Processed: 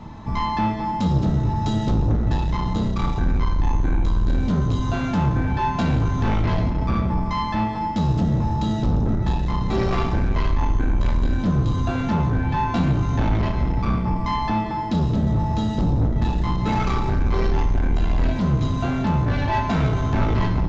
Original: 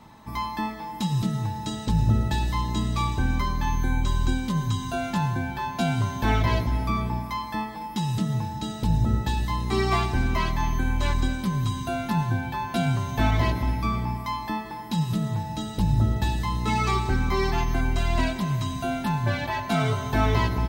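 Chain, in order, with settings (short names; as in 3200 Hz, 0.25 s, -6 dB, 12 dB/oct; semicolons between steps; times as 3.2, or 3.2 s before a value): octaver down 1 oct, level -5 dB; tilt -2 dB/oct; notches 50/100 Hz; in parallel at +1.5 dB: compressor, threshold -24 dBFS, peak gain reduction 14.5 dB; on the sum: soft clip -17 dBFS, distortion -8 dB; on a send at -6 dB: reverb RT60 0.65 s, pre-delay 7 ms; on the sum: downsampling 16000 Hz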